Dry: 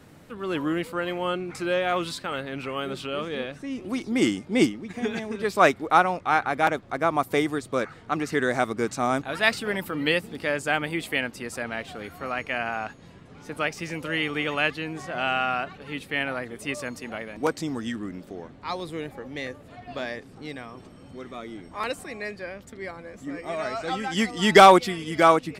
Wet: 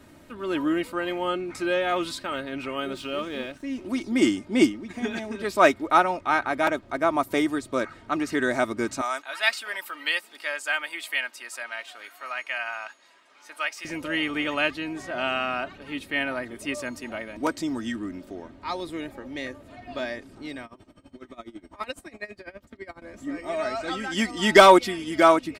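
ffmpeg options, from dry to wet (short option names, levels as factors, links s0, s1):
-filter_complex "[0:a]asettb=1/sr,asplit=3[s0][s1][s2];[s0]atrim=end=2.924[s3];[s1]atrim=start=2.92:end=3.88,asetpts=PTS-STARTPTS,afade=t=in:d=0.004:c=qsin,afade=t=out:st=0.956:d=0.004:c=qsin,aeval=exprs='sgn(val(0))*max(abs(val(0))-0.00251,0)':c=same[s4];[s2]atrim=start=3.876[s5];[s3][s4]acrossfade=d=0.004:c1=hsin:c2=qsin[s6];[s6][s5]acrossfade=d=0.004:c1=qsin:c2=hsin,asettb=1/sr,asplit=3[s7][s8][s9];[s7]atrim=end=9.014[s10];[s8]atrim=start=9.01:end=13.85,asetpts=PTS-STARTPTS,afade=t=in:d=0.004:c=qsin,afade=t=out:st=4.836:d=0.004:c=qsin,highpass=1000[s11];[s9]atrim=start=13.846[s12];[s10][s11]acrossfade=d=0.004:c1=hsin:c2=qsin[s13];[s13][s12]acrossfade=d=0.004:c1=qsin:c2=hsin,asettb=1/sr,asplit=3[s14][s15][s16];[s14]atrim=end=20.654[s17];[s15]atrim=start=20.65:end=23.02,asetpts=PTS-STARTPTS,afade=t=in:d=0.004:c=qsin,afade=t=out:st=2.366:d=0.004:c=qsin,aeval=exprs='val(0)*pow(10,-21*(0.5-0.5*cos(2*PI*12*n/s))/20)':c=same[s18];[s16]atrim=start=23.016[s19];[s17][s18]acrossfade=d=0.004:c1=hsin:c2=qsin[s20];[s20][s19]acrossfade=d=0.004:c1=qsin:c2=hsin,aecho=1:1:3.2:0.54,volume=0.891"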